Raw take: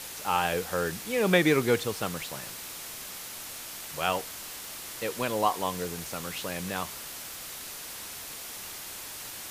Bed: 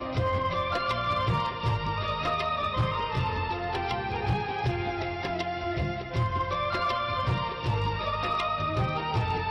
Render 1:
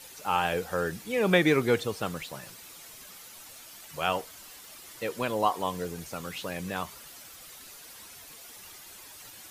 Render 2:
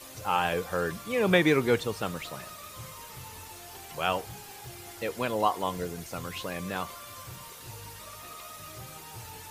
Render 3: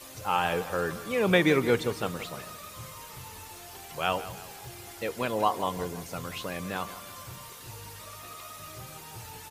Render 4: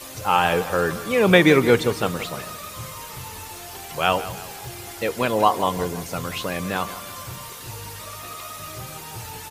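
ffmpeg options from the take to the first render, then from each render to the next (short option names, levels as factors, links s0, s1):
-af "afftdn=nr=10:nf=-41"
-filter_complex "[1:a]volume=0.126[s0];[0:a][s0]amix=inputs=2:normalize=0"
-filter_complex "[0:a]asplit=2[s0][s1];[s1]adelay=167,lowpass=f=3600:p=1,volume=0.2,asplit=2[s2][s3];[s3]adelay=167,lowpass=f=3600:p=1,volume=0.48,asplit=2[s4][s5];[s5]adelay=167,lowpass=f=3600:p=1,volume=0.48,asplit=2[s6][s7];[s7]adelay=167,lowpass=f=3600:p=1,volume=0.48,asplit=2[s8][s9];[s9]adelay=167,lowpass=f=3600:p=1,volume=0.48[s10];[s0][s2][s4][s6][s8][s10]amix=inputs=6:normalize=0"
-af "volume=2.51"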